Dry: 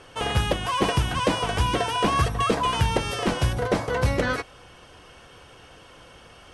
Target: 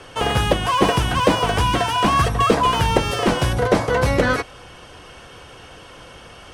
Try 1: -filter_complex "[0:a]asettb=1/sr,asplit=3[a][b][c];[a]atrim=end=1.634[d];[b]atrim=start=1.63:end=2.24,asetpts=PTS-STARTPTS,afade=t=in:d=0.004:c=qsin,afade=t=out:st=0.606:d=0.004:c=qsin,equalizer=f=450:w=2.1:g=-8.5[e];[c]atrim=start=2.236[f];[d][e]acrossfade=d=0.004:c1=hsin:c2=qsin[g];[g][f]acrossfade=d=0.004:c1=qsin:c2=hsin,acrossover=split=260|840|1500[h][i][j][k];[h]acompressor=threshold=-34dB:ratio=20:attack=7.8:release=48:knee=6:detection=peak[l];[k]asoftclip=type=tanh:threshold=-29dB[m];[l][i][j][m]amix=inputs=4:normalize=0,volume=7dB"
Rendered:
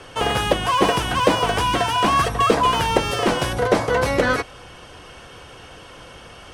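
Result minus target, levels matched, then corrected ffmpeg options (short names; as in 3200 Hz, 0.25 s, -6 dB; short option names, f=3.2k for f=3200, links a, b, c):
compressor: peak gain reduction +9.5 dB
-filter_complex "[0:a]asettb=1/sr,asplit=3[a][b][c];[a]atrim=end=1.634[d];[b]atrim=start=1.63:end=2.24,asetpts=PTS-STARTPTS,afade=t=in:d=0.004:c=qsin,afade=t=out:st=0.606:d=0.004:c=qsin,equalizer=f=450:w=2.1:g=-8.5[e];[c]atrim=start=2.236[f];[d][e]acrossfade=d=0.004:c1=hsin:c2=qsin[g];[g][f]acrossfade=d=0.004:c1=qsin:c2=hsin,acrossover=split=260|840|1500[h][i][j][k];[h]acompressor=threshold=-24dB:ratio=20:attack=7.8:release=48:knee=6:detection=peak[l];[k]asoftclip=type=tanh:threshold=-29dB[m];[l][i][j][m]amix=inputs=4:normalize=0,volume=7dB"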